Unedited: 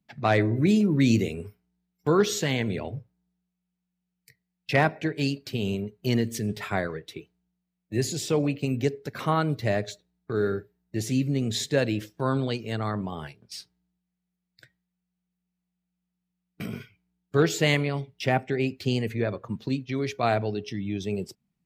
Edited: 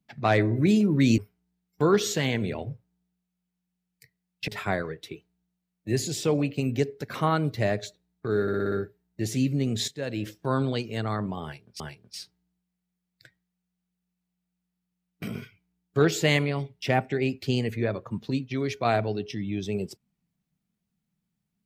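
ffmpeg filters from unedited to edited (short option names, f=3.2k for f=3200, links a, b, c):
-filter_complex "[0:a]asplit=10[a][b][c][d][e][f][g][h][i][j];[a]atrim=end=1.182[k];[b]atrim=start=1.438:end=4.742[l];[c]atrim=start=6.528:end=10.532[m];[d]atrim=start=10.468:end=10.532[n];[e]atrim=start=10.468:end=10.532[o];[f]atrim=start=10.468:end=10.532[p];[g]atrim=start=10.468:end=10.532[q];[h]atrim=start=10.468:end=11.63,asetpts=PTS-STARTPTS,afade=t=out:st=1.158:d=0.004:c=hsin:silence=0.237137[r];[i]atrim=start=11.63:end=13.552,asetpts=PTS-STARTPTS,afade=t=in:d=0.4:c=qua:silence=0.237137[s];[j]atrim=start=13.178[t];[k][l]acrossfade=d=0.004:c1=hsin:c2=hsin[u];[u][m]acrossfade=d=0.004:c1=hsin:c2=hsin[v];[v][n]acrossfade=d=0.004:c1=hsin:c2=hsin[w];[w][o]acrossfade=d=0.004:c1=hsin:c2=hsin[x];[x][p]acrossfade=d=0.004:c1=hsin:c2=hsin[y];[y][q]acrossfade=d=0.004:c1=hsin:c2=hsin[z];[r][s]concat=n=2:v=0:a=1[aa];[z][aa]acrossfade=d=0.004:c1=hsin:c2=hsin[ab];[ab][t]acrossfade=d=0.004:c1=hsin:c2=hsin"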